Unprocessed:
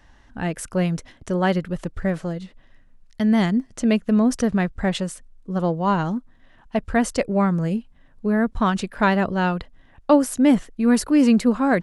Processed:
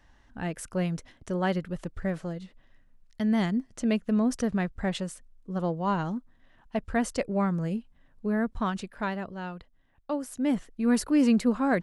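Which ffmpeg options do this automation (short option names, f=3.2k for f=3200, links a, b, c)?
-af "volume=2.5dB,afade=t=out:st=8.37:d=0.92:silence=0.375837,afade=t=in:st=10.18:d=0.78:silence=0.334965"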